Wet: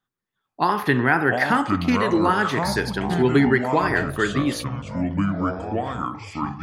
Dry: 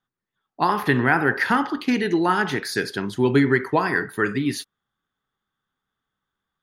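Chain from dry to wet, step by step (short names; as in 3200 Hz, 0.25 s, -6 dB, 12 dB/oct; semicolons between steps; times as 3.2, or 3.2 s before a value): echoes that change speed 0.444 s, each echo -6 st, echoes 3, each echo -6 dB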